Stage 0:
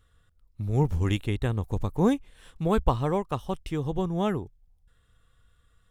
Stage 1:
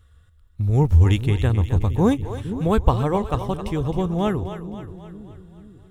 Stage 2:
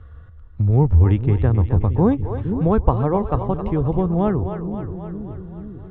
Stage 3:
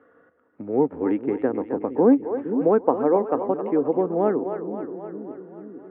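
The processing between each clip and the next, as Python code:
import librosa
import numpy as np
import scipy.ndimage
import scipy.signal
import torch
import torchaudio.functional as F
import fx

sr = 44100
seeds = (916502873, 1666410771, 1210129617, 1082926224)

y1 = fx.peak_eq(x, sr, hz=79.0, db=12.5, octaves=0.68)
y1 = fx.echo_split(y1, sr, split_hz=360.0, low_ms=465, high_ms=264, feedback_pct=52, wet_db=-10.5)
y1 = y1 * 10.0 ** (4.0 / 20.0)
y2 = scipy.signal.sosfilt(scipy.signal.butter(2, 1300.0, 'lowpass', fs=sr, output='sos'), y1)
y2 = fx.band_squash(y2, sr, depth_pct=40)
y2 = y2 * 10.0 ** (2.5 / 20.0)
y3 = fx.cabinet(y2, sr, low_hz=270.0, low_slope=24, high_hz=2100.0, hz=(270.0, 490.0, 1100.0), db=(7, 5, -5))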